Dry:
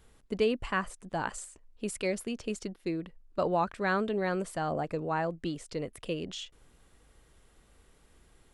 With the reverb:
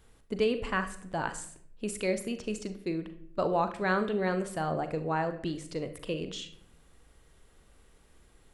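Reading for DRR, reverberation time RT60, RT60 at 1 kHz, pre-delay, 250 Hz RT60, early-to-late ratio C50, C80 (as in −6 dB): 8.5 dB, 0.70 s, 0.55 s, 38 ms, 0.80 s, 11.5 dB, 15.5 dB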